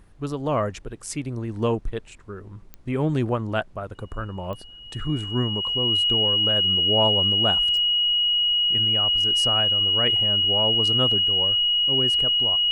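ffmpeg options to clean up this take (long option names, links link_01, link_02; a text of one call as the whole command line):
ffmpeg -i in.wav -af "adeclick=threshold=4,bandreject=frequency=2900:width=30,agate=range=-21dB:threshold=-35dB" out.wav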